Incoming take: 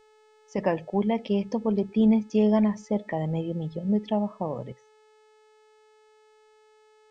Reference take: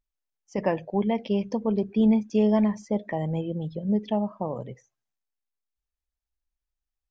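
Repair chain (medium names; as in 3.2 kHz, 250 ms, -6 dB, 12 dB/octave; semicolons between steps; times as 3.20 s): de-hum 430.8 Hz, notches 21; trim 0 dB, from 4.72 s +7 dB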